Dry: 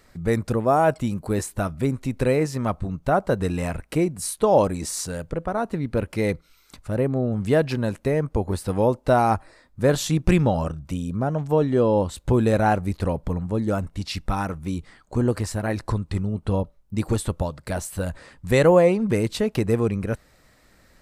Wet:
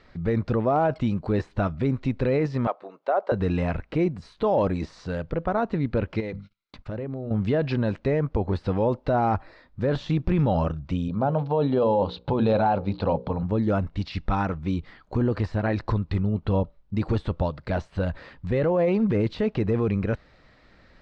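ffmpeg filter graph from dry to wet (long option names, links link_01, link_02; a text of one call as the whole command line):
ffmpeg -i in.wav -filter_complex "[0:a]asettb=1/sr,asplit=3[link_01][link_02][link_03];[link_01]atrim=end=2.674[link_04];[link_02]atrim=start=2.67:end=3.32,asetpts=PTS-STARTPTS,afade=type=in:duration=0.004:curve=qsin,afade=type=out:start_time=0.646:duration=0.004:curve=qsin,highpass=frequency=490:width=0.5412,highpass=frequency=490:width=1.3066,tiltshelf=frequency=850:gain=6[link_05];[link_03]atrim=start=3.316[link_06];[link_04][link_05]acrossfade=duration=0.004:curve1=hsin:curve2=qsin[link_07];[link_07][link_06]acrossfade=duration=0.004:curve1=qsin:curve2=hsin,asettb=1/sr,asplit=3[link_08][link_09][link_10];[link_08]atrim=end=6.204[link_11];[link_09]atrim=start=6.2:end=7.31,asetpts=PTS-STARTPTS,afade=type=in:duration=0.004:curve=qsin,afade=type=out:start_time=1.106:duration=0.004:curve=qsin,bandreject=frequency=50:width_type=h:width=6,bandreject=frequency=100:width_type=h:width=6,bandreject=frequency=150:width_type=h:width=6,bandreject=frequency=200:width_type=h:width=6,bandreject=frequency=250:width_type=h:width=6,agate=range=-31dB:threshold=-49dB:ratio=16:release=100:detection=peak,acompressor=threshold=-29dB:ratio=10:attack=3.2:release=140:knee=1:detection=peak[link_12];[link_10]atrim=start=7.306[link_13];[link_11][link_12]acrossfade=duration=0.004:curve1=hsin:curve2=qsin[link_14];[link_14][link_13]acrossfade=duration=0.004:curve1=qsin:curve2=hsin,asettb=1/sr,asplit=3[link_15][link_16][link_17];[link_15]atrim=end=11.084[link_18];[link_16]atrim=start=11.08:end=13.43,asetpts=PTS-STARTPTS,afade=type=in:duration=0.004:curve=qsin,afade=type=out:start_time=2.346:duration=0.004:curve=qsin,highpass=110,equalizer=frequency=340:width_type=q:width=4:gain=-5,equalizer=frequency=540:width_type=q:width=4:gain=4,equalizer=frequency=850:width_type=q:width=4:gain=7,equalizer=frequency=1900:width_type=q:width=4:gain=-10,equalizer=frequency=4100:width_type=q:width=4:gain=6,lowpass=frequency=4800:width=0.5412,lowpass=frequency=4800:width=1.3066,bandreject=frequency=60:width_type=h:width=6,bandreject=frequency=120:width_type=h:width=6,bandreject=frequency=180:width_type=h:width=6,bandreject=frequency=240:width_type=h:width=6,bandreject=frequency=300:width_type=h:width=6,bandreject=frequency=360:width_type=h:width=6,bandreject=frequency=420:width_type=h:width=6,bandreject=frequency=480:width_type=h:width=6,bandreject=frequency=540:width_type=h:width=6[link_19];[link_17]atrim=start=13.426[link_20];[link_18][link_19]acrossfade=duration=0.004:curve1=hsin:curve2=qsin[link_21];[link_21][link_20]acrossfade=duration=0.004:curve1=qsin:curve2=hsin,deesser=0.9,lowpass=frequency=4400:width=0.5412,lowpass=frequency=4400:width=1.3066,alimiter=limit=-16dB:level=0:latency=1:release=14,volume=1.5dB" out.wav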